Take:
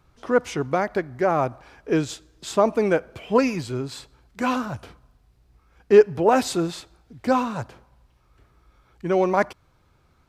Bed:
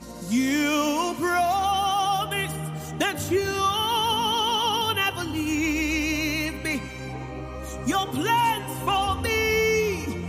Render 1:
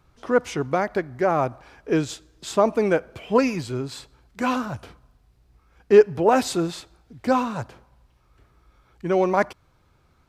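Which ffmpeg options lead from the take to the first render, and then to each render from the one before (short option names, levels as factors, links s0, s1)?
-af anull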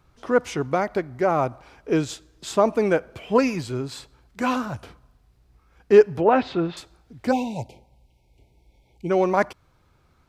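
-filter_complex "[0:a]asettb=1/sr,asplit=3[s0][s1][s2];[s0]atrim=end=0.774[s3];[s1]atrim=start=0.77:end=2.02,asetpts=PTS-STARTPTS,afade=t=in:d=0.004:c=qsin,afade=t=out:st=1.246:d=0.004:c=qsin,bandreject=f=1700:w=12[s4];[s2]atrim=start=2.016[s5];[s3][s4]acrossfade=d=0.004:c1=hsin:c2=qsin[s6];[s6][s5]acrossfade=d=0.004:c1=qsin:c2=hsin,asettb=1/sr,asplit=3[s7][s8][s9];[s7]atrim=end=6.214[s10];[s8]atrim=start=6.21:end=6.77,asetpts=PTS-STARTPTS,afade=t=in:d=0.004:c=qsin,afade=t=out:st=0.556:d=0.004:c=qsin,lowpass=f=3400:w=0.5412,lowpass=f=3400:w=1.3066[s11];[s9]atrim=start=6.766[s12];[s10][s11]acrossfade=d=0.004:c1=hsin:c2=qsin[s13];[s13][s12]acrossfade=d=0.004:c1=qsin:c2=hsin,asplit=3[s14][s15][s16];[s14]afade=t=out:st=7.31:d=0.02[s17];[s15]asuperstop=centerf=1400:order=20:qfactor=1.2,afade=t=in:st=7.31:d=0.02,afade=t=out:st=9.09:d=0.02[s18];[s16]afade=t=in:st=9.09:d=0.02[s19];[s17][s18][s19]amix=inputs=3:normalize=0"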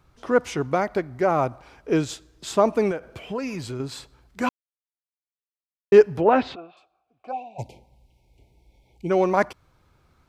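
-filter_complex "[0:a]asettb=1/sr,asplit=3[s0][s1][s2];[s0]atrim=end=2.914[s3];[s1]atrim=start=2.91:end=3.8,asetpts=PTS-STARTPTS,afade=t=in:d=0.004:c=qsin,afade=t=out:st=0.886:d=0.004:c=qsin,acompressor=threshold=0.0398:ratio=3:attack=3.2:release=140:knee=1:detection=peak[s4];[s2]atrim=start=3.796[s5];[s3][s4]acrossfade=d=0.004:c1=hsin:c2=qsin[s6];[s6][s5]acrossfade=d=0.004:c1=qsin:c2=hsin,asplit=3[s7][s8][s9];[s7]afade=t=out:st=6.54:d=0.02[s10];[s8]asplit=3[s11][s12][s13];[s11]bandpass=f=730:t=q:w=8,volume=1[s14];[s12]bandpass=f=1090:t=q:w=8,volume=0.501[s15];[s13]bandpass=f=2440:t=q:w=8,volume=0.355[s16];[s14][s15][s16]amix=inputs=3:normalize=0,afade=t=in:st=6.54:d=0.02,afade=t=out:st=7.58:d=0.02[s17];[s9]afade=t=in:st=7.58:d=0.02[s18];[s10][s17][s18]amix=inputs=3:normalize=0,asplit=3[s19][s20][s21];[s19]atrim=end=4.49,asetpts=PTS-STARTPTS,afade=t=out:st=4.486:d=0.004:c=hsin[s22];[s20]atrim=start=4.49:end=5.92,asetpts=PTS-STARTPTS,volume=0[s23];[s21]atrim=start=5.92,asetpts=PTS-STARTPTS,afade=t=in:d=0.004:c=hsin[s24];[s22][s23][s24]concat=n=3:v=0:a=1"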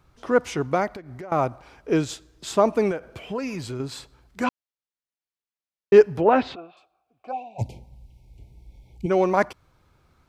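-filter_complex "[0:a]asettb=1/sr,asplit=3[s0][s1][s2];[s0]atrim=end=0.924[s3];[s1]atrim=start=0.92:end=1.32,asetpts=PTS-STARTPTS,afade=t=in:d=0.004:c=qsin,afade=t=out:st=0.396:d=0.004:c=qsin,acompressor=threshold=0.02:ratio=10:attack=3.2:release=140:knee=1:detection=peak[s4];[s2]atrim=start=1.316[s5];[s3][s4]acrossfade=d=0.004:c1=hsin:c2=qsin[s6];[s6][s5]acrossfade=d=0.004:c1=qsin:c2=hsin,asettb=1/sr,asplit=3[s7][s8][s9];[s7]atrim=end=4.444[s10];[s8]atrim=start=4.44:end=5.96,asetpts=PTS-STARTPTS,afade=t=in:d=0.004:c=qsin,afade=t=out:st=1.516:d=0.004:c=qsin,lowpass=6500[s11];[s9]atrim=start=5.956[s12];[s10][s11]acrossfade=d=0.004:c1=hsin:c2=qsin[s13];[s13][s12]acrossfade=d=0.004:c1=qsin:c2=hsin,asettb=1/sr,asplit=3[s14][s15][s16];[s14]atrim=end=7.614[s17];[s15]atrim=start=7.61:end=9.06,asetpts=PTS-STARTPTS,afade=t=in:d=0.004:c=qsin,afade=t=out:st=1.446:d=0.004:c=qsin,bass=f=250:g=11,treble=f=4000:g=3[s18];[s16]atrim=start=9.056[s19];[s17][s18]acrossfade=d=0.004:c1=hsin:c2=qsin[s20];[s20][s19]acrossfade=d=0.004:c1=qsin:c2=hsin"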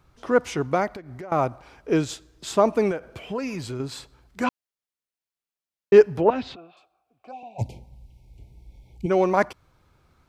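-filter_complex "[0:a]asettb=1/sr,asplit=3[s0][s1][s2];[s0]atrim=end=6.304[s3];[s1]atrim=start=6.3:end=7.43,asetpts=PTS-STARTPTS,afade=t=in:d=0.004:c=qsin,afade=t=out:st=1.126:d=0.004:c=qsin,acrossover=split=220|3000[s4][s5][s6];[s5]acompressor=threshold=0.00224:ratio=1.5:attack=3.2:release=140:knee=2.83:detection=peak[s7];[s4][s7][s6]amix=inputs=3:normalize=0[s8];[s2]atrim=start=7.426[s9];[s3][s8]acrossfade=d=0.004:c1=hsin:c2=qsin[s10];[s10][s9]acrossfade=d=0.004:c1=qsin:c2=hsin"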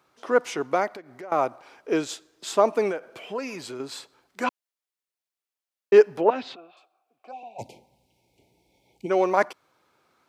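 -af "highpass=330"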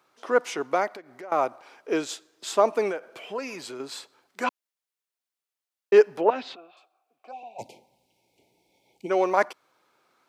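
-af "highpass=f=270:p=1"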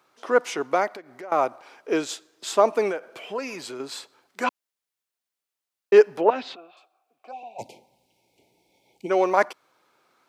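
-af "volume=1.26"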